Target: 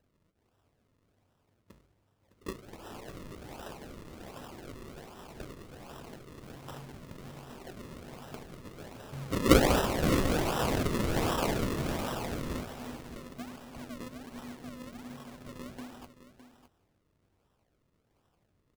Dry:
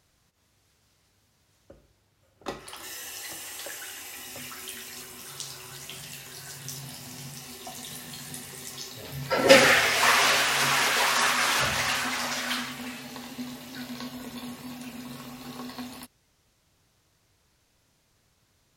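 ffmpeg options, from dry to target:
-filter_complex "[0:a]asplit=2[a][b];[b]adelay=21,volume=-10.5dB[c];[a][c]amix=inputs=2:normalize=0,acrusher=samples=39:mix=1:aa=0.000001:lfo=1:lforange=39:lforate=1.3,aecho=1:1:610:0.251,volume=-6dB"

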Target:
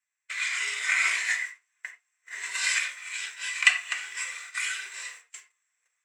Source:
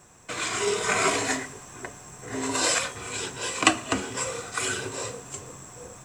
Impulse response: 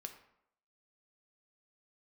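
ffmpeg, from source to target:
-filter_complex "[0:a]agate=range=-27dB:threshold=-37dB:ratio=16:detection=peak,highpass=f=2k:t=q:w=4.4[a];[1:a]atrim=start_sample=2205,atrim=end_sample=4410[b];[a][b]afir=irnorm=-1:irlink=0,volume=-1dB"

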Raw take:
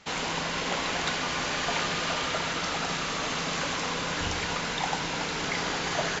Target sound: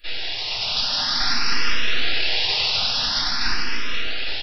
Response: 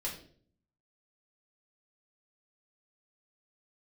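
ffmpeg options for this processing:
-filter_complex "[0:a]dynaudnorm=f=250:g=9:m=6.5dB,aecho=1:1:233:0.2,aresample=11025,aeval=exprs='abs(val(0))':c=same,aresample=44100,atempo=1.4[a];[1:a]atrim=start_sample=2205,asetrate=61740,aresample=44100[b];[a][b]afir=irnorm=-1:irlink=0,crystalizer=i=8:c=0,asplit=2[c][d];[d]afreqshift=0.48[e];[c][e]amix=inputs=2:normalize=1"

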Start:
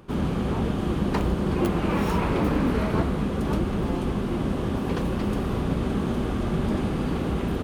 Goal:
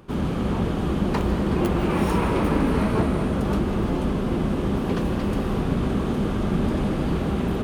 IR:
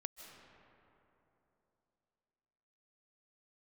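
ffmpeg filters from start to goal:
-filter_complex "[0:a]asettb=1/sr,asplit=3[a][b][c];[a]atrim=end=1.904[d];[b]atrim=start=1.9:end=3.35,asetpts=PTS-STARTPTS,afade=t=in:d=0.004:c=qsin,afade=t=out:st=1.446:d=0.004:c=qsin,equalizer=f=9.3k:t=o:w=0.22:g=7[e];[c]atrim=start=3.346[f];[d][e]acrossfade=d=0.004:c1=hsin:c2=qsin[g];[g][f]acrossfade=d=0.004:c1=qsin:c2=hsin[h];[1:a]atrim=start_sample=2205[i];[h][i]afir=irnorm=-1:irlink=0,volume=5dB"

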